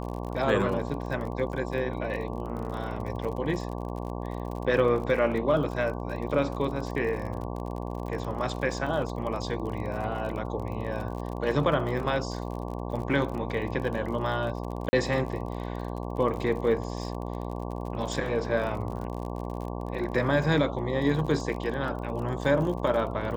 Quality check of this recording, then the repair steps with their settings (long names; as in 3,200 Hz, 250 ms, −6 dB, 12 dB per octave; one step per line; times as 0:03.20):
mains buzz 60 Hz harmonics 19 −34 dBFS
surface crackle 43 per second −35 dBFS
0:14.89–0:14.93: drop-out 40 ms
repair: click removal
hum removal 60 Hz, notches 19
repair the gap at 0:14.89, 40 ms